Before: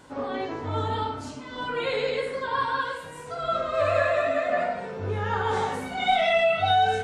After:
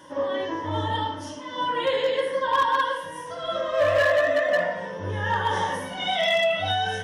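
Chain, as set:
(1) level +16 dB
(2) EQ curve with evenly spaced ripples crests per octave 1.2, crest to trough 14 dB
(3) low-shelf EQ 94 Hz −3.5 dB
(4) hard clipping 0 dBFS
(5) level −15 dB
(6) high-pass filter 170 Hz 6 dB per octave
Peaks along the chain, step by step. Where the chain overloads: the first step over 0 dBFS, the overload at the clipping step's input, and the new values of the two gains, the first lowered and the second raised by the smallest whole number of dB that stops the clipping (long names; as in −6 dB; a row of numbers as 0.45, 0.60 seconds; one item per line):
+5.5, +8.5, +8.5, 0.0, −15.0, −12.5 dBFS
step 1, 8.5 dB
step 1 +7 dB, step 5 −6 dB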